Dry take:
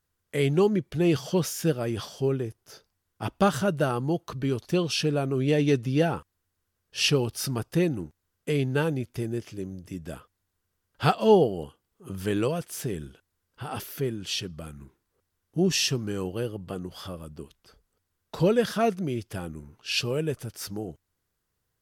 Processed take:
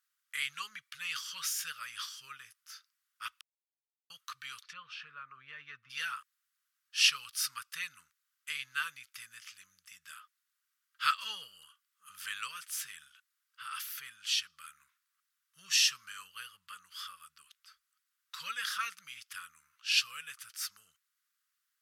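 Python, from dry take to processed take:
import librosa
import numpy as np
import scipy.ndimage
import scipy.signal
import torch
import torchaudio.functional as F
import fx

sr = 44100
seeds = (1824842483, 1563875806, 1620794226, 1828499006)

y = fx.env_lowpass_down(x, sr, base_hz=1200.0, full_db=-23.5, at=(4.62, 5.89), fade=0.02)
y = fx.edit(y, sr, fx.silence(start_s=3.41, length_s=0.69), tone=tone)
y = scipy.signal.sosfilt(scipy.signal.ellip(4, 1.0, 40, 1200.0, 'highpass', fs=sr, output='sos'), y)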